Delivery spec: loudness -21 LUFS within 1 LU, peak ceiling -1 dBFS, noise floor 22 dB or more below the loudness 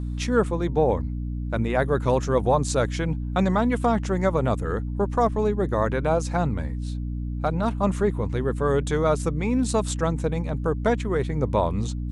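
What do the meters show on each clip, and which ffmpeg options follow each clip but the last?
hum 60 Hz; highest harmonic 300 Hz; hum level -26 dBFS; loudness -24.5 LUFS; peak level -7.5 dBFS; loudness target -21.0 LUFS
-> -af "bandreject=f=60:t=h:w=6,bandreject=f=120:t=h:w=6,bandreject=f=180:t=h:w=6,bandreject=f=240:t=h:w=6,bandreject=f=300:t=h:w=6"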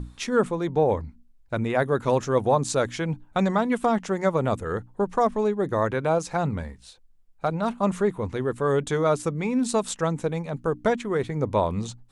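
hum not found; loudness -25.5 LUFS; peak level -9.5 dBFS; loudness target -21.0 LUFS
-> -af "volume=1.68"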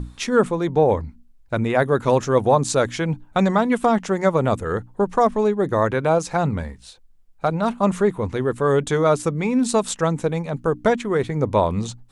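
loudness -21.0 LUFS; peak level -5.0 dBFS; noise floor -50 dBFS

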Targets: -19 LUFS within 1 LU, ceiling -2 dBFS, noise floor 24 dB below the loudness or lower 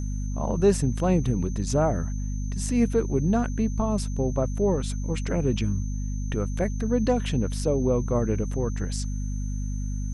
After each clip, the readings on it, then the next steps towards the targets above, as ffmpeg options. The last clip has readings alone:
hum 50 Hz; highest harmonic 250 Hz; hum level -26 dBFS; steady tone 6.2 kHz; tone level -46 dBFS; loudness -26.5 LUFS; peak level -8.5 dBFS; loudness target -19.0 LUFS
-> -af "bandreject=f=50:t=h:w=4,bandreject=f=100:t=h:w=4,bandreject=f=150:t=h:w=4,bandreject=f=200:t=h:w=4,bandreject=f=250:t=h:w=4"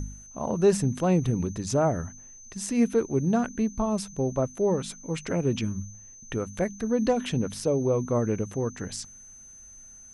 hum not found; steady tone 6.2 kHz; tone level -46 dBFS
-> -af "bandreject=f=6200:w=30"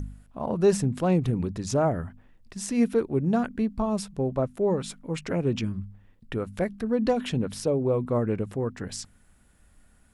steady tone not found; loudness -27.0 LUFS; peak level -10.5 dBFS; loudness target -19.0 LUFS
-> -af "volume=2.51"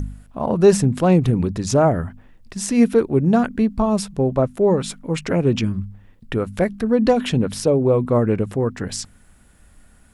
loudness -19.0 LUFS; peak level -2.5 dBFS; noise floor -51 dBFS

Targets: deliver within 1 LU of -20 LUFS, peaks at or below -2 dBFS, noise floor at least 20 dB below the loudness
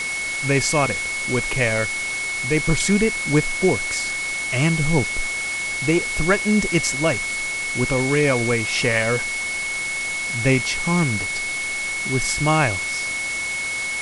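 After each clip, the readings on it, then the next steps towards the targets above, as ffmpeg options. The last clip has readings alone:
steady tone 2.2 kHz; tone level -24 dBFS; noise floor -26 dBFS; noise floor target -41 dBFS; loudness -20.5 LUFS; peak level -4.0 dBFS; loudness target -20.0 LUFS
-> -af "bandreject=f=2200:w=30"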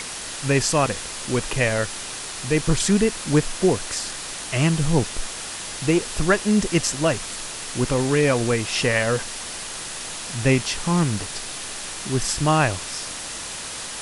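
steady tone not found; noise floor -33 dBFS; noise floor target -43 dBFS
-> -af "afftdn=nr=10:nf=-33"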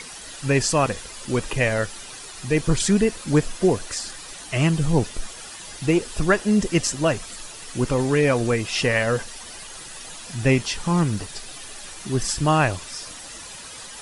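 noise floor -39 dBFS; noise floor target -43 dBFS
-> -af "afftdn=nr=6:nf=-39"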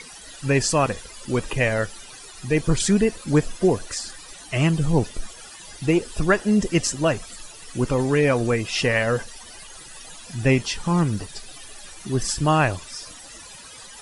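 noise floor -42 dBFS; noise floor target -43 dBFS
-> -af "afftdn=nr=6:nf=-42"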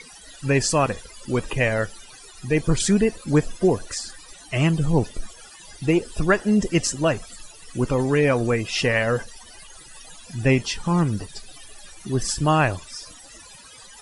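noise floor -46 dBFS; loudness -22.5 LUFS; peak level -5.5 dBFS; loudness target -20.0 LUFS
-> -af "volume=1.33"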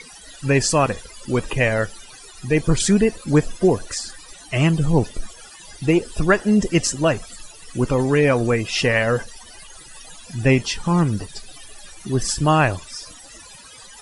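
loudness -20.0 LUFS; peak level -3.0 dBFS; noise floor -43 dBFS

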